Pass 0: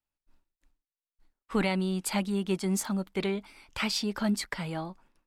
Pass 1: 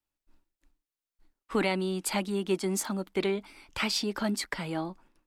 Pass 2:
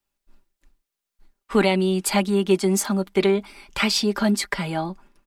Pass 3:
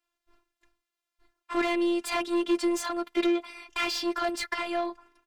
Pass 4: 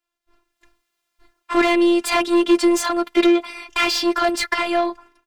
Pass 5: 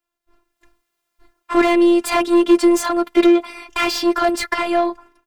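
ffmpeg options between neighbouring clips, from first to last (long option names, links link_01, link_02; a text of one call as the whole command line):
ffmpeg -i in.wav -filter_complex "[0:a]equalizer=frequency=320:width_type=o:width=0.51:gain=5.5,acrossover=split=230[link_01][link_02];[link_01]acompressor=threshold=-41dB:ratio=6[link_03];[link_03][link_02]amix=inputs=2:normalize=0,volume=1dB" out.wav
ffmpeg -i in.wav -af "aecho=1:1:5:0.53,volume=6.5dB" out.wav
ffmpeg -i in.wav -filter_complex "[0:a]asplit=2[link_01][link_02];[link_02]highpass=frequency=720:poles=1,volume=22dB,asoftclip=type=tanh:threshold=-6.5dB[link_03];[link_01][link_03]amix=inputs=2:normalize=0,lowpass=frequency=2300:poles=1,volume=-6dB,afftfilt=real='hypot(re,im)*cos(PI*b)':imag='0':win_size=512:overlap=0.75,volume=-8dB" out.wav
ffmpeg -i in.wav -af "dynaudnorm=framelen=200:gausssize=5:maxgain=12dB" out.wav
ffmpeg -i in.wav -af "equalizer=frequency=3700:width_type=o:width=2.6:gain=-5.5,volume=3dB" out.wav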